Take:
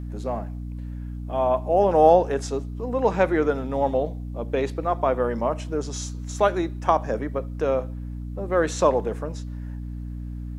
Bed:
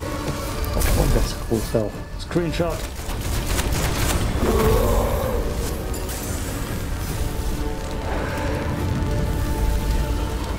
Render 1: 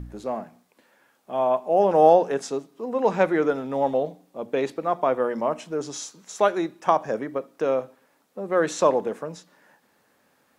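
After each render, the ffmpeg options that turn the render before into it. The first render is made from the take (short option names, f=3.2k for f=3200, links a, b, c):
-af "bandreject=f=60:t=h:w=4,bandreject=f=120:t=h:w=4,bandreject=f=180:t=h:w=4,bandreject=f=240:t=h:w=4,bandreject=f=300:t=h:w=4"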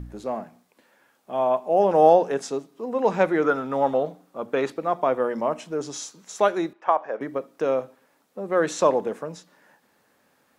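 -filter_complex "[0:a]asettb=1/sr,asplit=3[a][b][c];[a]atrim=end=3.444[d];[b]atrim=start=3.44:end=4.73,asetpts=PTS-STARTPTS,afade=t=in:d=0.004:c=qsin,afade=t=out:st=1.286:d=0.004:c=qsin,equalizer=f=1.3k:w=2.2:g=10[e];[c]atrim=start=4.726[f];[d][e]acrossfade=d=0.004:c1=hsin:c2=qsin[g];[g][f]acrossfade=d=0.004:c1=qsin:c2=hsin,asettb=1/sr,asplit=3[h][i][j];[h]atrim=end=6.734[k];[i]atrim=start=6.73:end=7.21,asetpts=PTS-STARTPTS,afade=t=in:d=0.004:c=qsin,afade=t=out:st=0.476:d=0.004:c=qsin,highpass=510,lowpass=2.2k[l];[j]atrim=start=7.206[m];[k][l]acrossfade=d=0.004:c1=hsin:c2=qsin[n];[n][m]acrossfade=d=0.004:c1=qsin:c2=hsin"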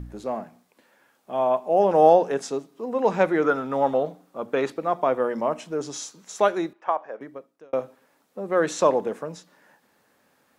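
-filter_complex "[0:a]asplit=2[a][b];[a]atrim=end=7.73,asetpts=PTS-STARTPTS,afade=t=out:st=6.49:d=1.24[c];[b]atrim=start=7.73,asetpts=PTS-STARTPTS,afade=t=in:d=0.004:c=hsin[d];[c][d]concat=n=2:v=0:a=1"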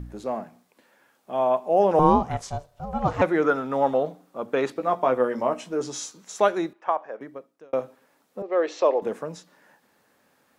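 -filter_complex "[0:a]asettb=1/sr,asplit=3[a][b][c];[a]atrim=end=1.994[d];[b]atrim=start=1.99:end=3.22,asetpts=PTS-STARTPTS,afade=t=in:d=0.004:c=qsin,afade=t=out:st=1.226:d=0.004:c=qsin,aeval=exprs='val(0)*sin(2*PI*300*n/s)':c=same[e];[c]atrim=start=3.216[f];[d][e]acrossfade=d=0.004:c1=hsin:c2=qsin[g];[g][f]acrossfade=d=0.004:c1=qsin:c2=hsin,asettb=1/sr,asplit=3[h][i][j];[h]atrim=end=4.744[k];[i]atrim=start=4.74:end=6.18,asetpts=PTS-STARTPTS,afade=t=in:d=0.004:c=qsin,afade=t=out:st=1.436:d=0.004:c=qsin,asplit=2[l][m];[m]adelay=16,volume=-7dB[n];[l][n]amix=inputs=2:normalize=0,atrim=end_sample=63504[o];[j]atrim=start=6.176[p];[k][o]acrossfade=d=0.004:c1=hsin:c2=qsin[q];[q][p]acrossfade=d=0.004:c1=qsin:c2=hsin,asettb=1/sr,asplit=3[r][s][t];[r]atrim=end=8.424[u];[s]atrim=start=8.42:end=9.02,asetpts=PTS-STARTPTS,afade=t=in:d=0.004:c=qsin,afade=t=out:st=0.596:d=0.004:c=qsin,highpass=f=350:w=0.5412,highpass=f=350:w=1.3066,equalizer=f=1k:t=q:w=4:g=-4,equalizer=f=1.5k:t=q:w=4:g=-10,equalizer=f=3.7k:t=q:w=4:g=-5,lowpass=f=4.7k:w=0.5412,lowpass=f=4.7k:w=1.3066[v];[t]atrim=start=9.016[w];[u][v]acrossfade=d=0.004:c1=hsin:c2=qsin[x];[x][w]acrossfade=d=0.004:c1=qsin:c2=hsin"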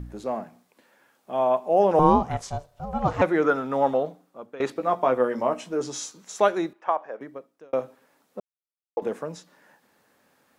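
-filter_complex "[0:a]asplit=4[a][b][c][d];[a]atrim=end=4.6,asetpts=PTS-STARTPTS,afade=t=out:st=3.9:d=0.7:silence=0.112202[e];[b]atrim=start=4.6:end=8.4,asetpts=PTS-STARTPTS,afade=t=in:d=0.004:c=hsin:silence=0.112202,afade=t=out:st=3.796:d=0.004:c=hsin[f];[c]atrim=start=8.4:end=8.97,asetpts=PTS-STARTPTS,volume=0[g];[d]atrim=start=8.97,asetpts=PTS-STARTPTS,afade=t=in:d=0.004:c=hsin[h];[e][f][g][h]concat=n=4:v=0:a=1"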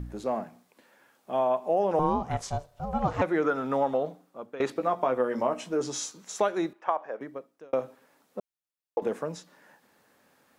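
-af "acompressor=threshold=-22dB:ratio=4"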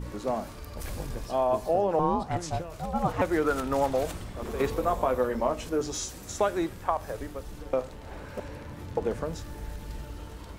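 -filter_complex "[1:a]volume=-17dB[a];[0:a][a]amix=inputs=2:normalize=0"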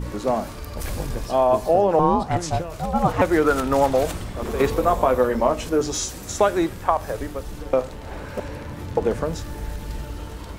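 -af "volume=7.5dB"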